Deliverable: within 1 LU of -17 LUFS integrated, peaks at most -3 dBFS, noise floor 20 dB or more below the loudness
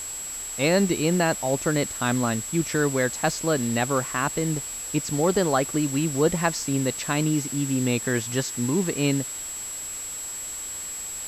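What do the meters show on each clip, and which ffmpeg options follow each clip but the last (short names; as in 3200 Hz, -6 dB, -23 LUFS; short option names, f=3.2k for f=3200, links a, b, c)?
steady tone 7700 Hz; tone level -32 dBFS; noise floor -34 dBFS; noise floor target -45 dBFS; loudness -25.0 LUFS; peak -8.0 dBFS; loudness target -17.0 LUFS
-> -af "bandreject=f=7.7k:w=30"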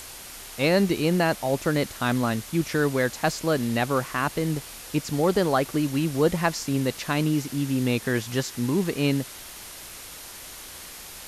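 steady tone none; noise floor -42 dBFS; noise floor target -45 dBFS
-> -af "afftdn=nr=6:nf=-42"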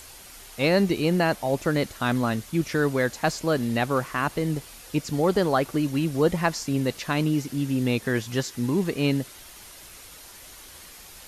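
noise floor -46 dBFS; loudness -25.0 LUFS; peak -8.5 dBFS; loudness target -17.0 LUFS
-> -af "volume=8dB,alimiter=limit=-3dB:level=0:latency=1"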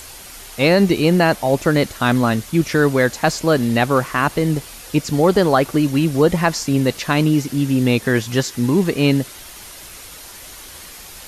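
loudness -17.5 LUFS; peak -3.0 dBFS; noise floor -38 dBFS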